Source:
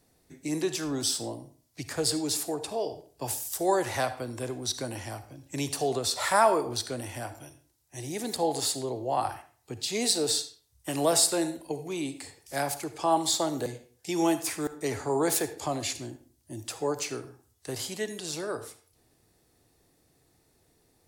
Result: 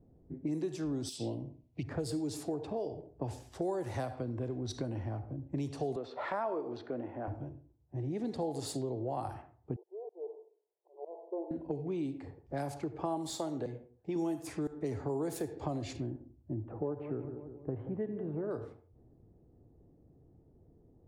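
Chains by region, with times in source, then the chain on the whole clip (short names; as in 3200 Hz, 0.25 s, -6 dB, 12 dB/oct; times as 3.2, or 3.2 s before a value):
1.09–1.83 resonant high shelf 2000 Hz +9 dB, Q 3 + compressor 10:1, threshold -28 dBFS
5.96–7.28 transient shaper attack -5 dB, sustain -1 dB + BPF 280–2800 Hz
9.76–11.51 auto swell 0.76 s + brick-wall FIR band-pass 340–1100 Hz
13.27–14.16 low shelf 430 Hz -7.5 dB + hard clip -19.5 dBFS
16.54–18.51 Gaussian blur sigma 4.4 samples + warbling echo 0.182 s, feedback 52%, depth 53 cents, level -13.5 dB
whole clip: low-pass opened by the level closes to 710 Hz, open at -24.5 dBFS; tilt shelf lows +9 dB, about 700 Hz; compressor 4:1, threshold -34 dBFS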